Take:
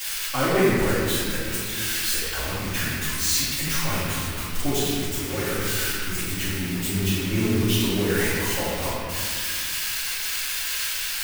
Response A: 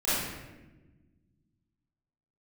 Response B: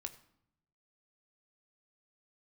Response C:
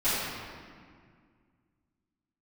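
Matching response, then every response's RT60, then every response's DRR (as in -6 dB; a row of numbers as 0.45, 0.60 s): C; 1.2, 0.75, 2.0 s; -14.0, 6.5, -16.5 dB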